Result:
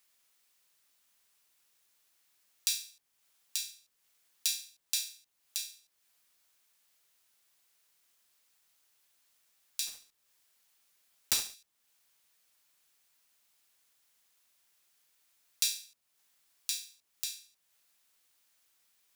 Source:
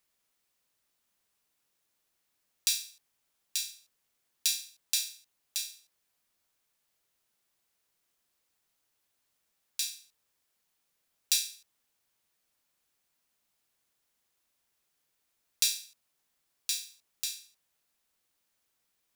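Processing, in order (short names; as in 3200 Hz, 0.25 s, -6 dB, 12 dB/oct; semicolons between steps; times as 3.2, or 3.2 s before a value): 9.87–11.55 block floating point 3-bit; mismatched tape noise reduction encoder only; gain -3 dB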